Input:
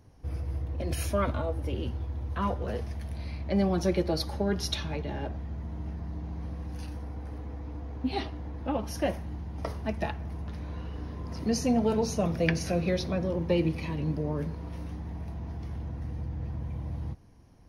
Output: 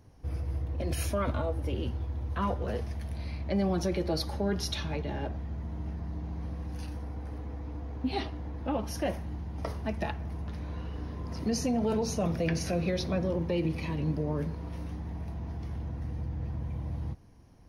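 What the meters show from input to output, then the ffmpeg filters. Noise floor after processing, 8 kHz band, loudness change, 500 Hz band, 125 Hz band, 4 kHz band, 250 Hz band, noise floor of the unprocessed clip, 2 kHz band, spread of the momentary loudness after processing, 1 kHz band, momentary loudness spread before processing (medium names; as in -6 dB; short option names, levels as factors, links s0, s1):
-40 dBFS, -0.5 dB, -1.5 dB, -2.0 dB, -0.5 dB, -1.5 dB, -1.5 dB, -40 dBFS, -2.5 dB, 9 LU, -1.5 dB, 12 LU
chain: -af "alimiter=limit=0.0944:level=0:latency=1:release=37"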